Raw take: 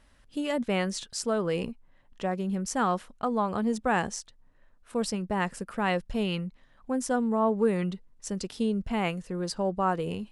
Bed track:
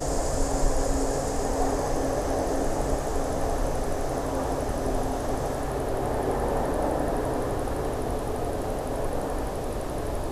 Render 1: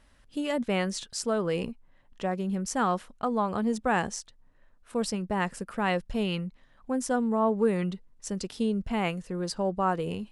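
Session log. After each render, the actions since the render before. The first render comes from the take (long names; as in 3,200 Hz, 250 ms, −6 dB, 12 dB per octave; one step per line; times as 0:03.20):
no processing that can be heard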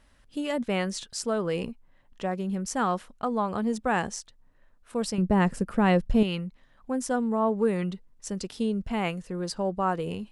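0:05.18–0:06.23: low-shelf EQ 470 Hz +11 dB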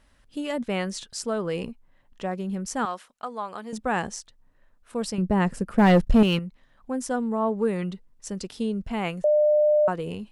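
0:02.85–0:03.73: high-pass filter 1,000 Hz 6 dB per octave
0:05.78–0:06.39: leveller curve on the samples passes 2
0:09.24–0:09.88: beep over 601 Hz −16 dBFS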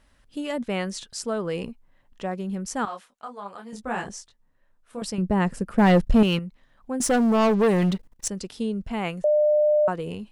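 0:02.85–0:05.02: micro pitch shift up and down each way 28 cents
0:07.00–0:08.28: leveller curve on the samples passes 3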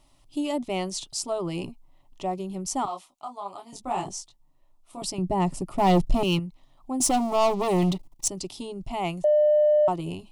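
in parallel at −4 dB: soft clipping −20 dBFS, distortion −12 dB
on the sum: phaser with its sweep stopped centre 320 Hz, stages 8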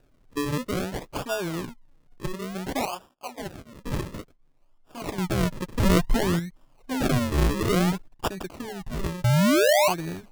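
sample-and-hold swept by an LFO 41×, swing 100% 0.57 Hz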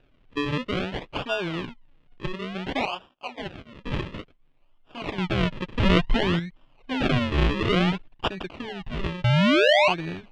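low-pass with resonance 3,000 Hz, resonance Q 2.5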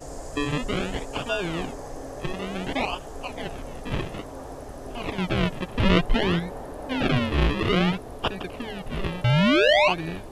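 mix in bed track −10.5 dB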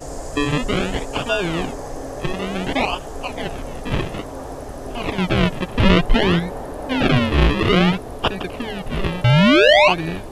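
level +6.5 dB
brickwall limiter −2 dBFS, peak gain reduction 2.5 dB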